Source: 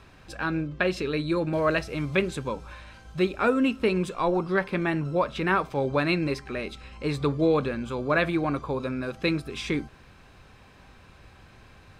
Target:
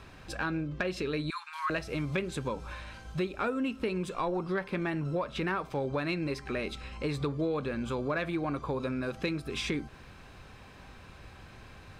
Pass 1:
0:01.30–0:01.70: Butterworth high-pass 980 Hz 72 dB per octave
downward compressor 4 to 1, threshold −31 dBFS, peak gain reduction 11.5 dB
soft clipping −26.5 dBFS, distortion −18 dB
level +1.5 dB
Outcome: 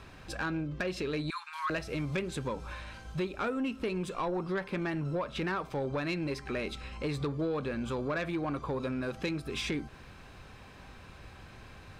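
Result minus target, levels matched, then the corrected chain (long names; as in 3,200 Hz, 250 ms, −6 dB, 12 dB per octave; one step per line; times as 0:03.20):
soft clipping: distortion +11 dB
0:01.30–0:01.70: Butterworth high-pass 980 Hz 72 dB per octave
downward compressor 4 to 1, threshold −31 dBFS, peak gain reduction 11.5 dB
soft clipping −19 dBFS, distortion −29 dB
level +1.5 dB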